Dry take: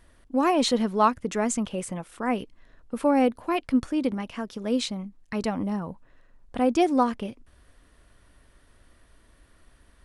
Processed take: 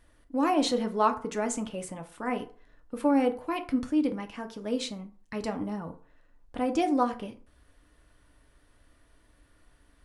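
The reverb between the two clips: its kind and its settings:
feedback delay network reverb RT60 0.44 s, low-frequency decay 0.8×, high-frequency decay 0.55×, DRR 5.5 dB
level −5 dB

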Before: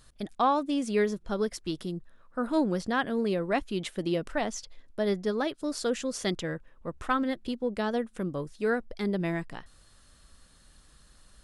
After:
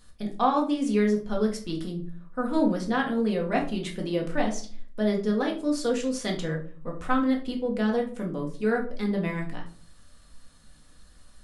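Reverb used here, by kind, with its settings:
rectangular room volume 320 cubic metres, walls furnished, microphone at 1.9 metres
level −2 dB

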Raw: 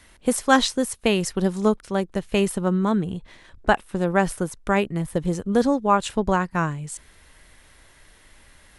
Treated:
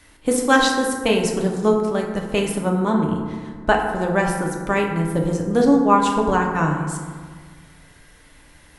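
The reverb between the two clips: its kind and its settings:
feedback delay network reverb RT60 1.7 s, low-frequency decay 1.25×, high-frequency decay 0.4×, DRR 0 dB

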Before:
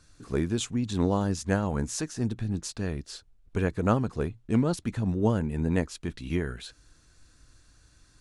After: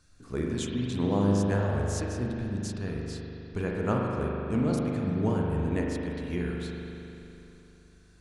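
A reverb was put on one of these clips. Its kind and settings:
spring reverb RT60 3.1 s, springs 40 ms, chirp 75 ms, DRR −2 dB
level −5 dB

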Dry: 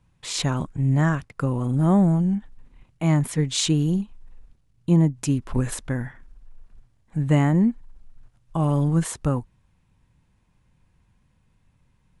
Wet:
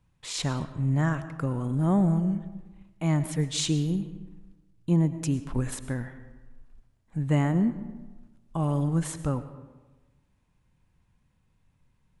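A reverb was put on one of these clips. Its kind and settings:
comb and all-pass reverb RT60 1.2 s, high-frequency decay 0.6×, pre-delay 65 ms, DRR 12.5 dB
level −5 dB

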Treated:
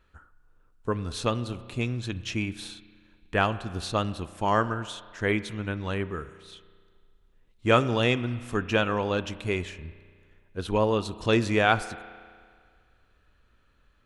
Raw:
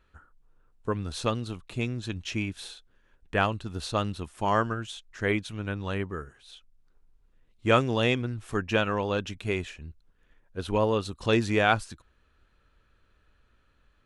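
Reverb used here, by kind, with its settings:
spring reverb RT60 1.9 s, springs 33 ms, chirp 35 ms, DRR 14.5 dB
level +1 dB

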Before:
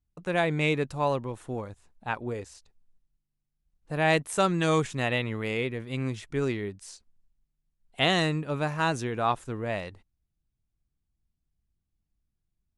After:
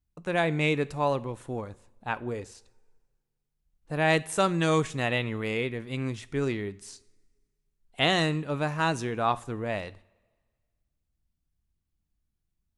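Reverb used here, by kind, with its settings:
coupled-rooms reverb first 0.48 s, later 1.7 s, from −18 dB, DRR 16 dB

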